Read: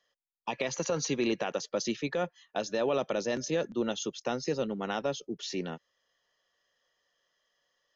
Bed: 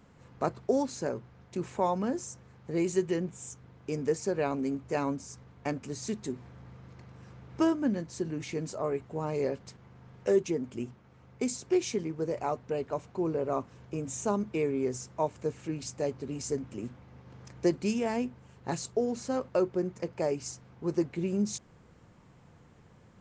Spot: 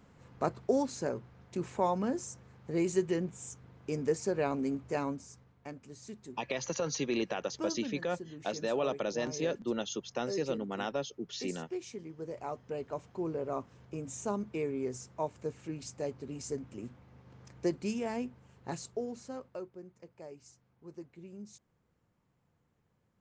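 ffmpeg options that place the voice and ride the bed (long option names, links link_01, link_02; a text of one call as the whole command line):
ffmpeg -i stem1.wav -i stem2.wav -filter_complex "[0:a]adelay=5900,volume=-3dB[link_01];[1:a]volume=5.5dB,afade=type=out:start_time=4.8:duration=0.78:silence=0.298538,afade=type=in:start_time=11.96:duration=0.95:silence=0.446684,afade=type=out:start_time=18.62:duration=1.1:silence=0.223872[link_02];[link_01][link_02]amix=inputs=2:normalize=0" out.wav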